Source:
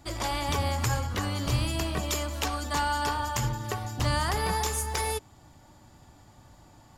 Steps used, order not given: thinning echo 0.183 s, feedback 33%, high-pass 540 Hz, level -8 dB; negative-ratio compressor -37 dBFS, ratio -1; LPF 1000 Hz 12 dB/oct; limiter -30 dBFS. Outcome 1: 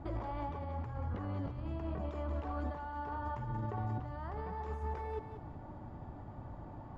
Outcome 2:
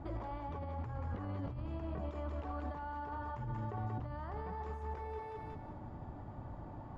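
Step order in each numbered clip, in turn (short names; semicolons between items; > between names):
negative-ratio compressor > LPF > limiter > thinning echo; thinning echo > negative-ratio compressor > limiter > LPF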